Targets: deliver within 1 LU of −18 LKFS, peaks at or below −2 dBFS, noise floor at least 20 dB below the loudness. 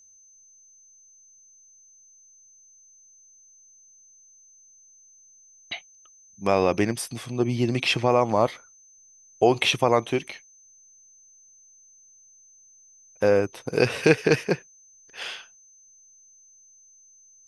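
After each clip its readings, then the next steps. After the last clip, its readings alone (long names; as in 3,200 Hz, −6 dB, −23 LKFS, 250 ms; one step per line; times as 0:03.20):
interfering tone 6,200 Hz; level of the tone −52 dBFS; integrated loudness −24.0 LKFS; sample peak −3.5 dBFS; target loudness −18.0 LKFS
→ notch filter 6,200 Hz, Q 30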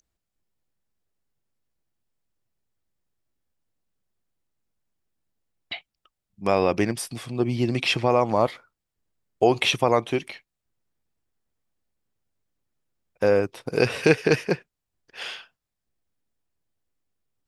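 interfering tone none found; integrated loudness −23.5 LKFS; sample peak −3.5 dBFS; target loudness −18.0 LKFS
→ level +5.5 dB
brickwall limiter −2 dBFS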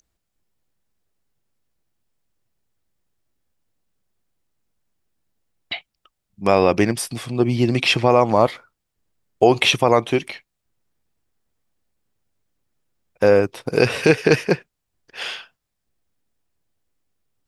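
integrated loudness −18.0 LKFS; sample peak −2.0 dBFS; background noise floor −78 dBFS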